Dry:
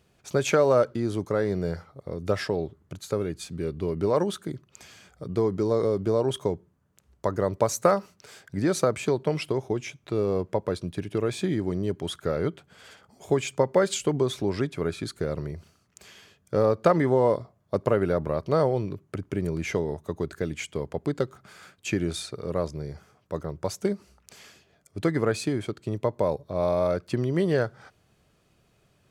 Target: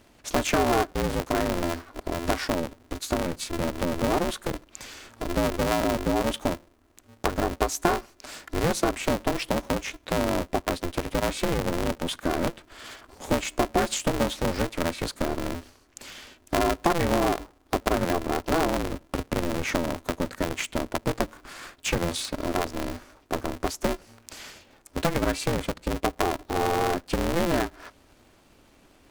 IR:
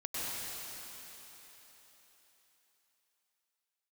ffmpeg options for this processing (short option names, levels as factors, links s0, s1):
-af "acompressor=threshold=0.0178:ratio=2,aeval=exprs='val(0)*sgn(sin(2*PI*170*n/s))':c=same,volume=2.37"